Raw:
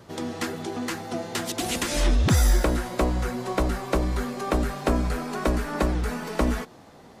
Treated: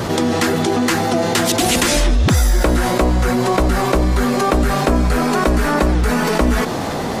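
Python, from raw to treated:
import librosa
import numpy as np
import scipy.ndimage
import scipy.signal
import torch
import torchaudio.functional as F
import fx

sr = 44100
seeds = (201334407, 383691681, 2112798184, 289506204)

y = fx.env_flatten(x, sr, amount_pct=70)
y = F.gain(torch.from_numpy(y), 4.0).numpy()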